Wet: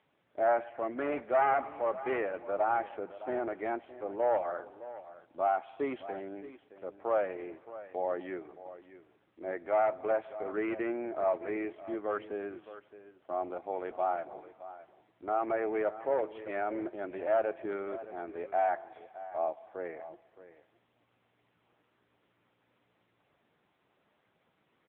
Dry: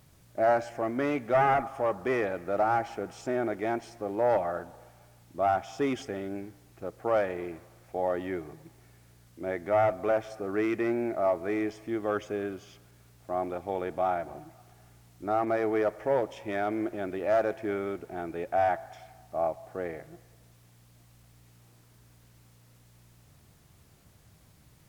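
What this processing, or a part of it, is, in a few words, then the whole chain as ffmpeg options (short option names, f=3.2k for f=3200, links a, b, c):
satellite phone: -af "highpass=340,lowpass=3.1k,aecho=1:1:617:0.178,volume=-2dB" -ar 8000 -c:a libopencore_amrnb -b:a 6700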